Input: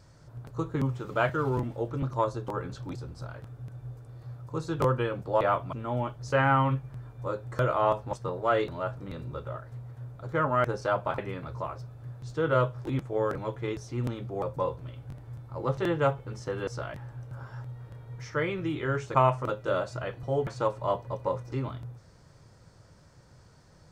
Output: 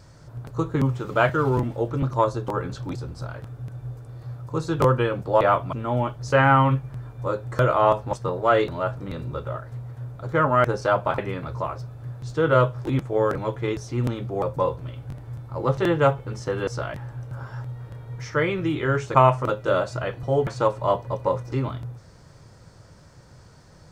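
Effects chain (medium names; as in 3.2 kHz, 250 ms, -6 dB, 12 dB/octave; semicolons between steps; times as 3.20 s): short-mantissa float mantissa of 8-bit; trim +6.5 dB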